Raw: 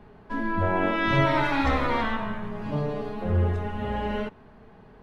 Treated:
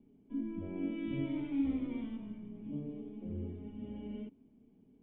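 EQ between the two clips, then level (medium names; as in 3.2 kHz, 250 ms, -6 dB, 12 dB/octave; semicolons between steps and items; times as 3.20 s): cascade formant filter i; bass shelf 180 Hz -9 dB; peaking EQ 2.4 kHz -9 dB 1.5 oct; 0.0 dB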